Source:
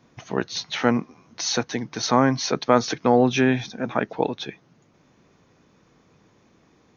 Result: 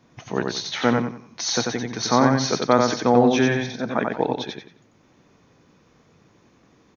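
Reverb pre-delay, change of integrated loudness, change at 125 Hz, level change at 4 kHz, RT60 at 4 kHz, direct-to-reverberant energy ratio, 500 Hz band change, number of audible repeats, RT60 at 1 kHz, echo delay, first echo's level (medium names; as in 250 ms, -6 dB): no reverb, +1.5 dB, +2.0 dB, +1.5 dB, no reverb, no reverb, +1.5 dB, 3, no reverb, 91 ms, -3.5 dB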